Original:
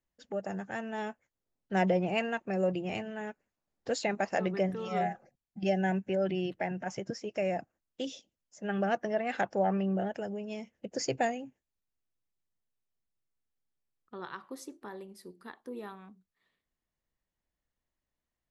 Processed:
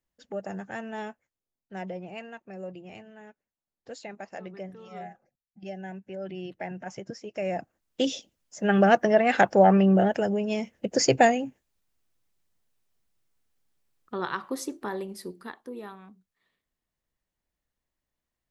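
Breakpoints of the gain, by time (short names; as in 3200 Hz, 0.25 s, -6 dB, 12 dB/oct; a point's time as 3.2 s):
0.98 s +1 dB
1.78 s -9.5 dB
5.97 s -9.5 dB
6.69 s -1.5 dB
7.31 s -1.5 dB
8.02 s +11 dB
15.23 s +11 dB
15.73 s +2 dB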